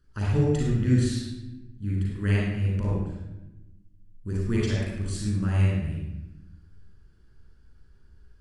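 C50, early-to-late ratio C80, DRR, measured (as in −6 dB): −2.5 dB, 1.5 dB, −5.5 dB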